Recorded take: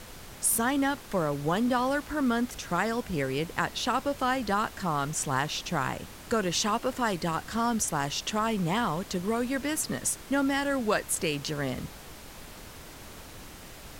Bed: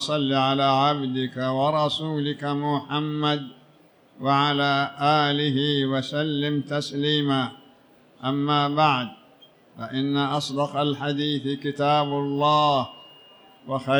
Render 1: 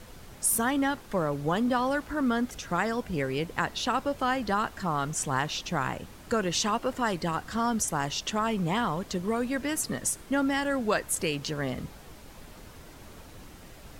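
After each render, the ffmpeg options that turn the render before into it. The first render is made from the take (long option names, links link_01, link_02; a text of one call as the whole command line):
ffmpeg -i in.wav -af "afftdn=noise_reduction=6:noise_floor=-46" out.wav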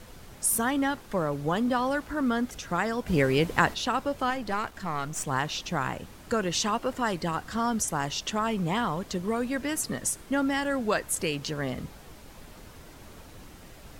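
ffmpeg -i in.wav -filter_complex "[0:a]asplit=3[link_01][link_02][link_03];[link_01]afade=type=out:start_time=3.06:duration=0.02[link_04];[link_02]acontrast=67,afade=type=in:start_time=3.06:duration=0.02,afade=type=out:start_time=3.73:duration=0.02[link_05];[link_03]afade=type=in:start_time=3.73:duration=0.02[link_06];[link_04][link_05][link_06]amix=inputs=3:normalize=0,asettb=1/sr,asplit=3[link_07][link_08][link_09];[link_07]atrim=end=4.304[link_10];[link_08]atrim=start=4.3:end=5.27,asetpts=PTS-STARTPTS,afade=type=in:duration=0.004:curve=qsin,afade=type=out:start_time=0.966:duration=0.004:curve=qsin,aeval=exprs='if(lt(val(0),0),0.447*val(0),val(0))':channel_layout=same[link_11];[link_09]atrim=start=5.266[link_12];[link_10][link_11]acrossfade=duration=0.004:curve1=hsin:curve2=qsin[link_13];[link_13][link_12]acrossfade=duration=0.004:curve1=qsin:curve2=hsin" out.wav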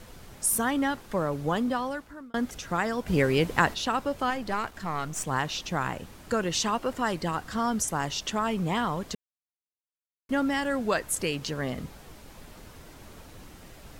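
ffmpeg -i in.wav -filter_complex "[0:a]asplit=4[link_01][link_02][link_03][link_04];[link_01]atrim=end=2.34,asetpts=PTS-STARTPTS,afade=type=out:start_time=1.56:duration=0.78[link_05];[link_02]atrim=start=2.34:end=9.15,asetpts=PTS-STARTPTS,afade=type=in:duration=0.004:curve=hsin,afade=type=out:start_time=6.806:duration=0.004:curve=hsin[link_06];[link_03]atrim=start=9.15:end=10.29,asetpts=PTS-STARTPTS,volume=0[link_07];[link_04]atrim=start=10.29,asetpts=PTS-STARTPTS,afade=type=in:duration=0.004:curve=hsin[link_08];[link_05][link_06][link_07][link_08]concat=n=4:v=0:a=1" out.wav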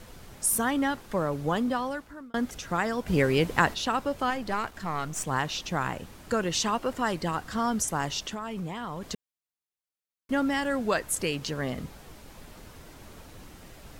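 ffmpeg -i in.wav -filter_complex "[0:a]asettb=1/sr,asplit=3[link_01][link_02][link_03];[link_01]atrim=end=8.234[link_04];[link_02]atrim=start=8.23:end=9.11,asetpts=PTS-STARTPTS,afade=type=in:duration=0.004:curve=qsin,afade=type=out:start_time=0.876:duration=0.004:curve=qsin,acompressor=threshold=-31dB:ratio=6:attack=3.2:release=140:knee=1:detection=peak[link_05];[link_03]atrim=start=9.106[link_06];[link_04][link_05]acrossfade=duration=0.004:curve1=hsin:curve2=qsin[link_07];[link_07][link_06]acrossfade=duration=0.004:curve1=qsin:curve2=hsin" out.wav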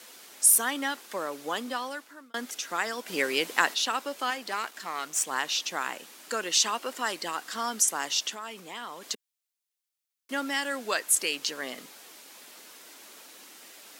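ffmpeg -i in.wav -af "highpass=frequency=260:width=0.5412,highpass=frequency=260:width=1.3066,tiltshelf=frequency=1500:gain=-7" out.wav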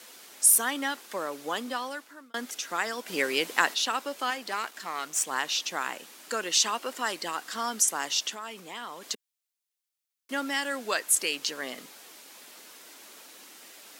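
ffmpeg -i in.wav -af anull out.wav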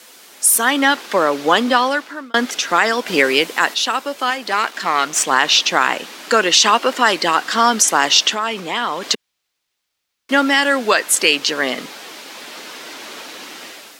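ffmpeg -i in.wav -filter_complex "[0:a]acrossover=split=5500[link_01][link_02];[link_01]dynaudnorm=framelen=440:gausssize=3:maxgain=13.5dB[link_03];[link_03][link_02]amix=inputs=2:normalize=0,alimiter=level_in=5.5dB:limit=-1dB:release=50:level=0:latency=1" out.wav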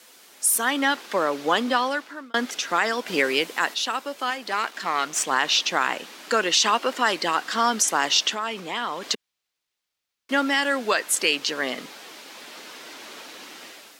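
ffmpeg -i in.wav -af "volume=-7.5dB" out.wav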